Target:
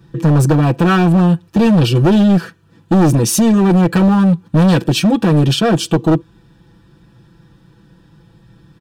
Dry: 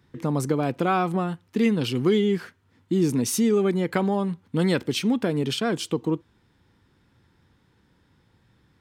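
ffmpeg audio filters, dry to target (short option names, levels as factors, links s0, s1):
-af "lowshelf=f=310:g=9,aecho=1:1:6:0.93,asoftclip=type=hard:threshold=0.168,asuperstop=centerf=2100:order=8:qfactor=7.8,volume=2.37"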